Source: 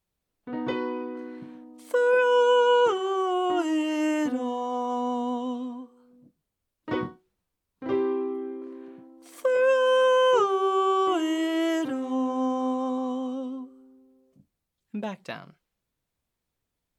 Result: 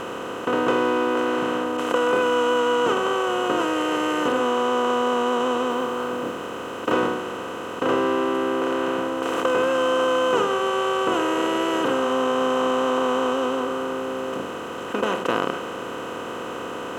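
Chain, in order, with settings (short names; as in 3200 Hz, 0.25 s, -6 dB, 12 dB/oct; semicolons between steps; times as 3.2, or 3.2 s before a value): per-bin compression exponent 0.2; 5.69–6.92 modulation noise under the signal 34 dB; gain -4 dB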